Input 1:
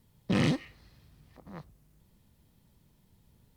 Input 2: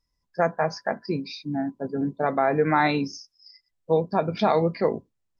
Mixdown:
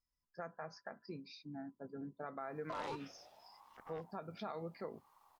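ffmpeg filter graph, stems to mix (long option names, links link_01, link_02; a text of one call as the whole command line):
ffmpeg -i stem1.wav -i stem2.wav -filter_complex "[0:a]aeval=exprs='val(0)*sin(2*PI*810*n/s+810*0.25/0.73*sin(2*PI*0.73*n/s))':channel_layout=same,adelay=2400,volume=-1.5dB[link_01];[1:a]acompressor=threshold=-39dB:ratio=1.5,equalizer=frequency=1300:width_type=o:width=0.35:gain=9,volume=-14.5dB,asplit=2[link_02][link_03];[link_03]apad=whole_len=263262[link_04];[link_01][link_04]sidechaincompress=threshold=-44dB:ratio=4:attack=16:release=472[link_05];[link_05][link_02]amix=inputs=2:normalize=0,alimiter=level_in=8.5dB:limit=-24dB:level=0:latency=1:release=109,volume=-8.5dB" out.wav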